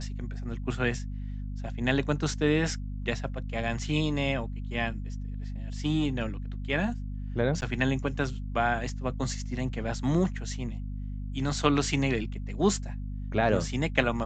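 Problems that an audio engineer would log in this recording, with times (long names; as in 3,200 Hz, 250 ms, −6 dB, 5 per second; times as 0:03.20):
mains hum 50 Hz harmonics 5 −35 dBFS
0:07.61–0:07.62: drop-out 9.4 ms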